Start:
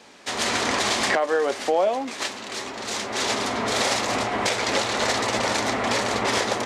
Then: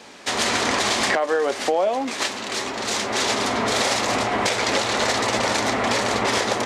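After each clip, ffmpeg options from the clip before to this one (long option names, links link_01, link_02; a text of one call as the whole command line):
ffmpeg -i in.wav -af "acompressor=threshold=-26dB:ratio=2,volume=5.5dB" out.wav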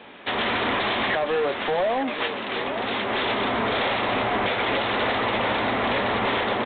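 ffmpeg -i in.wav -af "aresample=8000,asoftclip=type=hard:threshold=-20dB,aresample=44100,aecho=1:1:878:0.282" out.wav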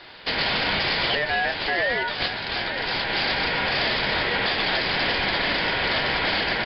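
ffmpeg -i in.wav -af "aeval=exprs='val(0)*sin(2*PI*1200*n/s)':channel_layout=same,crystalizer=i=2.5:c=0,volume=1dB" out.wav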